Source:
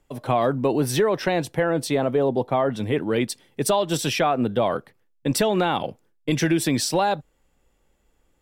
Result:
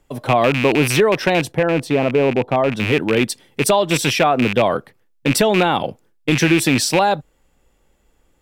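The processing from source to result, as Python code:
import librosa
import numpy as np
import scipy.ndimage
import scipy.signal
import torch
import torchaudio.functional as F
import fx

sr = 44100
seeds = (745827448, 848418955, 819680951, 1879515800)

y = fx.rattle_buzz(x, sr, strikes_db=-28.0, level_db=-15.0)
y = fx.high_shelf(y, sr, hz=2100.0, db=-11.0, at=(1.51, 2.76), fade=0.02)
y = y * librosa.db_to_amplitude(5.5)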